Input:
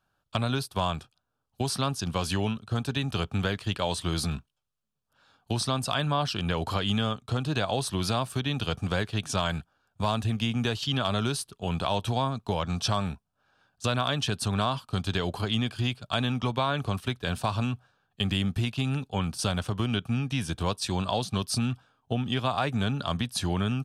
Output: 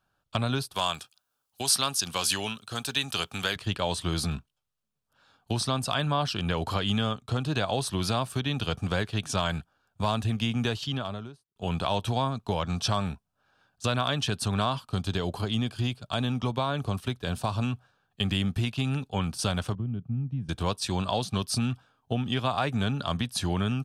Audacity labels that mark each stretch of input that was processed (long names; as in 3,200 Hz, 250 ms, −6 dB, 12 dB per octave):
0.740000	3.560000	spectral tilt +3.5 dB per octave
10.630000	11.560000	fade out and dull
14.790000	17.630000	dynamic equaliser 2,000 Hz, up to −5 dB, over −41 dBFS, Q 0.76
19.750000	20.490000	resonant band-pass 140 Hz, Q 1.5